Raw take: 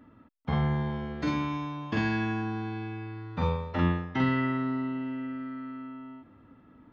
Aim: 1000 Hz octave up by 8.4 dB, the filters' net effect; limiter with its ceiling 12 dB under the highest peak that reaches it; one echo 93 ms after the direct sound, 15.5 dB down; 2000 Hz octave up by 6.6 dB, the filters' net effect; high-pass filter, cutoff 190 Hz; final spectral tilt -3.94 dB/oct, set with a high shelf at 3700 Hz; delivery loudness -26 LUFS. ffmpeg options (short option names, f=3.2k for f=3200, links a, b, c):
-af "highpass=190,equalizer=f=1k:t=o:g=8.5,equalizer=f=2k:t=o:g=3.5,highshelf=f=3.7k:g=7.5,alimiter=level_in=1dB:limit=-24dB:level=0:latency=1,volume=-1dB,aecho=1:1:93:0.168,volume=8dB"